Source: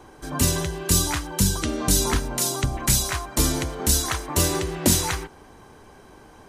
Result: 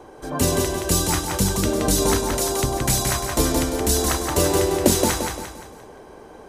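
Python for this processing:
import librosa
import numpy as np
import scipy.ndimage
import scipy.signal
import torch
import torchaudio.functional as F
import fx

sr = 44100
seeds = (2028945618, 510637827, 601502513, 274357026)

p1 = fx.peak_eq(x, sr, hz=520.0, db=9.5, octaves=1.5)
p2 = p1 + fx.echo_feedback(p1, sr, ms=173, feedback_pct=41, wet_db=-4.0, dry=0)
y = p2 * librosa.db_to_amplitude(-1.5)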